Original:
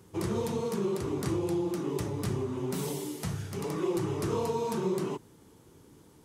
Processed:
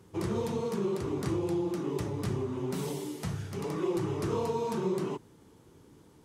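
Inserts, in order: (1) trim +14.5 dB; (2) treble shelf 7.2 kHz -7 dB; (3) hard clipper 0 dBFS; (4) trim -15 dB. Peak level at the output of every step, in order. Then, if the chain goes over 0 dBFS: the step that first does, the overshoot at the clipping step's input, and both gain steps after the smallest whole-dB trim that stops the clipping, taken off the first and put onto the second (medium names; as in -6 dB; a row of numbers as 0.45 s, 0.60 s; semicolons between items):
-4.5 dBFS, -4.5 dBFS, -4.5 dBFS, -19.5 dBFS; nothing clips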